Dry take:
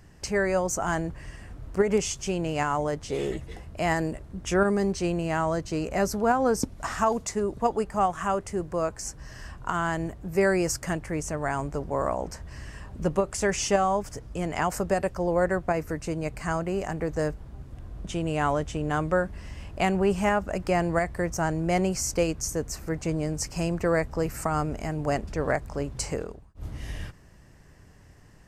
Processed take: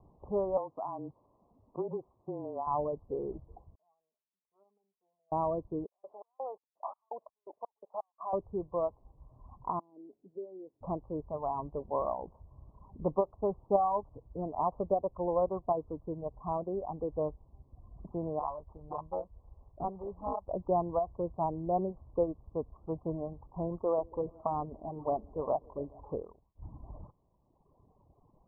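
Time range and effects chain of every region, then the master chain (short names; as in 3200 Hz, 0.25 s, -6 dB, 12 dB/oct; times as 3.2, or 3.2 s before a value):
0.57–2.67 HPF 210 Hz + compressor 3:1, threshold -27 dBFS + frequency shift -25 Hz
3.75–5.32 band-pass 5200 Hz, Q 11 + comb 4.6 ms, depth 67%
5.86–8.33 level quantiser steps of 18 dB + LFO high-pass square 2.8 Hz 630–4600 Hz
9.79–10.81 compressor 4:1, threshold -28 dBFS + ladder band-pass 310 Hz, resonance 50% + bell 410 Hz +8 dB 0.3 oct
18.39–20.48 LPF 3400 Hz 24 dB/oct + bell 290 Hz -12 dB 2.8 oct + sample-rate reducer 2100 Hz
23.78–26.13 low shelf 200 Hz -4.5 dB + delay with a stepping band-pass 0.14 s, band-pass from 290 Hz, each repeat 0.7 oct, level -9.5 dB
whole clip: reverb removal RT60 1.9 s; steep low-pass 1100 Hz 96 dB/oct; low shelf 390 Hz -9.5 dB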